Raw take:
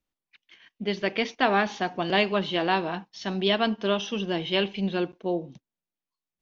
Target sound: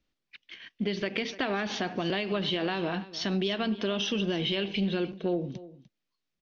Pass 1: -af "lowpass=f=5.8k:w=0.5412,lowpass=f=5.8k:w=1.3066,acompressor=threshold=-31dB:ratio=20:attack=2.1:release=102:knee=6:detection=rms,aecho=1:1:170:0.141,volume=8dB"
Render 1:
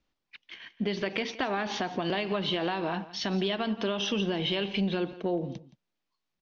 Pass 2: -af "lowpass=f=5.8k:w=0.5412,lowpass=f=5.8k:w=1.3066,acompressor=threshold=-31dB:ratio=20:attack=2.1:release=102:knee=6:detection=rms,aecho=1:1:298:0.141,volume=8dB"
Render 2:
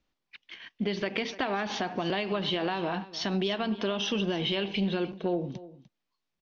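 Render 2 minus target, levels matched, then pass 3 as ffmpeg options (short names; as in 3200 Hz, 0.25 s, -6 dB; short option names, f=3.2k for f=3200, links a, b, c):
1000 Hz band +3.0 dB
-af "lowpass=f=5.8k:w=0.5412,lowpass=f=5.8k:w=1.3066,equalizer=f=900:w=1.6:g=-7,acompressor=threshold=-31dB:ratio=20:attack=2.1:release=102:knee=6:detection=rms,aecho=1:1:298:0.141,volume=8dB"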